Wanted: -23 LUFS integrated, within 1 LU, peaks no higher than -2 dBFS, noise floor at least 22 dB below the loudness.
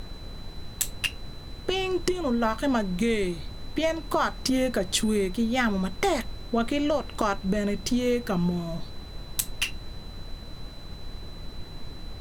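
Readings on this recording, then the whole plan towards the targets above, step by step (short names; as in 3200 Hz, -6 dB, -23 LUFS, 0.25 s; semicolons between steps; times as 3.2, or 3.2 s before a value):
steady tone 4000 Hz; tone level -48 dBFS; noise floor -41 dBFS; noise floor target -50 dBFS; loudness -27.5 LUFS; peak -9.0 dBFS; loudness target -23.0 LUFS
-> notch 4000 Hz, Q 30; noise print and reduce 9 dB; gain +4.5 dB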